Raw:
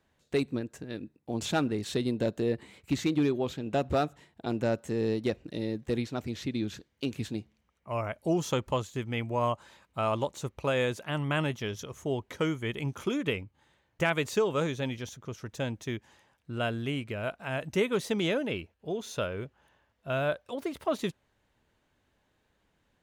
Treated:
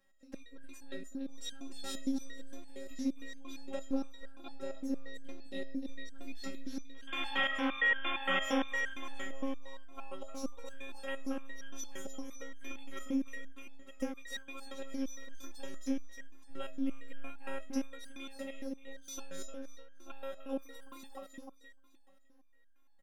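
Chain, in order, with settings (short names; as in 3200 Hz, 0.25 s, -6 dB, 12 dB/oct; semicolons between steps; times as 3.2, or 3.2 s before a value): compressor, threshold -34 dBFS, peak gain reduction 12 dB; painted sound noise, 7.07–8.64, 230–3600 Hz -30 dBFS; pre-echo 0.127 s -22 dB; robotiser 270 Hz; on a send: feedback echo 0.303 s, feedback 41%, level -4.5 dB; on the sum: stepped resonator 8.7 Hz 190–1600 Hz; gain +14.5 dB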